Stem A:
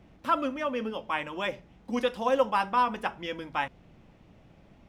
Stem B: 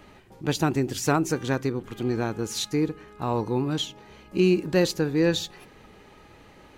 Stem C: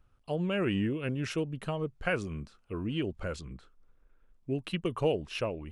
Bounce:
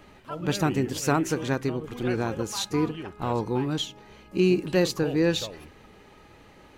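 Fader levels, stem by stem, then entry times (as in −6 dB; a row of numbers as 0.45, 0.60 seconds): −13.5, −1.0, −6.0 decibels; 0.00, 0.00, 0.00 seconds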